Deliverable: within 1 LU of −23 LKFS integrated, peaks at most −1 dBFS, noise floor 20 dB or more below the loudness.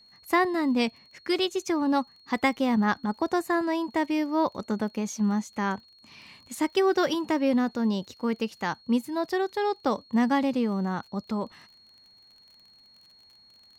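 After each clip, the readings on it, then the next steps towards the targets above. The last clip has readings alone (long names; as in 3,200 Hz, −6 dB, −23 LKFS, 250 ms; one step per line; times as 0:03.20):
crackle rate 33 per second; interfering tone 4,300 Hz; level of the tone −54 dBFS; integrated loudness −27.0 LKFS; sample peak −10.5 dBFS; target loudness −23.0 LKFS
→ click removal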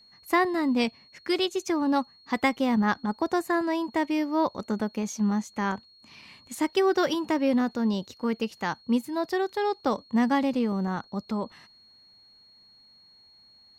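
crackle rate 0 per second; interfering tone 4,300 Hz; level of the tone −54 dBFS
→ notch filter 4,300 Hz, Q 30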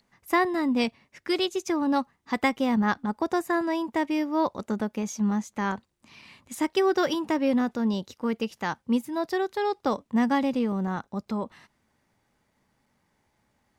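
interfering tone none found; integrated loudness −27.0 LKFS; sample peak −10.5 dBFS; target loudness −23.0 LKFS
→ level +4 dB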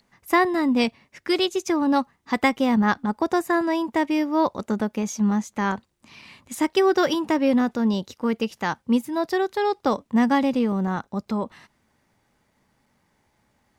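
integrated loudness −23.0 LKFS; sample peak −6.5 dBFS; background noise floor −69 dBFS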